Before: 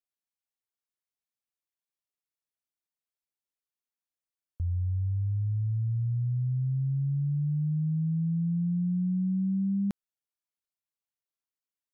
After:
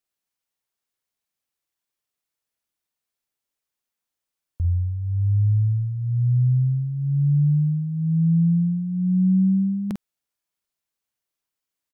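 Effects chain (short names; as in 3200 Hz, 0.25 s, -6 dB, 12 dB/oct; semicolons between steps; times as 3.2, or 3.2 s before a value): doubler 48 ms -6 dB; gain +7 dB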